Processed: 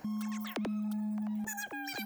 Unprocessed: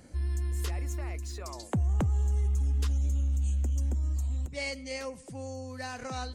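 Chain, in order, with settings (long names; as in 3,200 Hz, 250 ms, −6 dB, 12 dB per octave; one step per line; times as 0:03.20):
downward compressor, threshold −34 dBFS, peak gain reduction 9 dB
change of speed 3.09×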